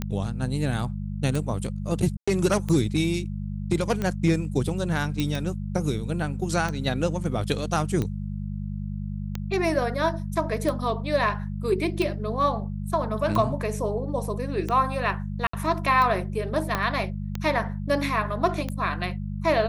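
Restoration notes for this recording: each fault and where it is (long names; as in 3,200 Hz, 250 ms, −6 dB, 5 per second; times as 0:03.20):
mains hum 50 Hz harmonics 4 −31 dBFS
scratch tick 45 rpm −15 dBFS
0:02.17–0:02.27: drop-out 105 ms
0:05.20: click
0:15.47–0:15.53: drop-out 64 ms
0:16.75: click −10 dBFS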